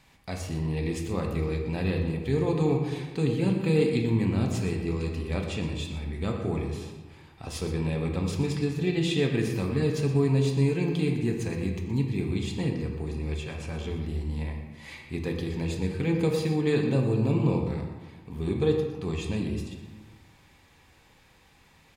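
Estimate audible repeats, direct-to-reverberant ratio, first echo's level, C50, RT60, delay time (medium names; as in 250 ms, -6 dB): 1, 1.0 dB, -12.0 dB, 4.0 dB, 1.3 s, 120 ms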